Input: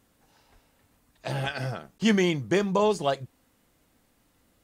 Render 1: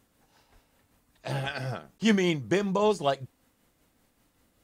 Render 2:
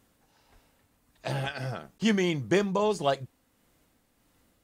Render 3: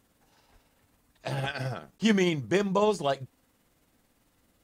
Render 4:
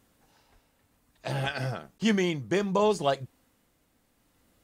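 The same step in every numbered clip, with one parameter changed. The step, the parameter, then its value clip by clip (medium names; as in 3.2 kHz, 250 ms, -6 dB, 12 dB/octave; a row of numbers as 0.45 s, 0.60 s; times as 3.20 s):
tremolo, rate: 5.2 Hz, 1.6 Hz, 18 Hz, 0.64 Hz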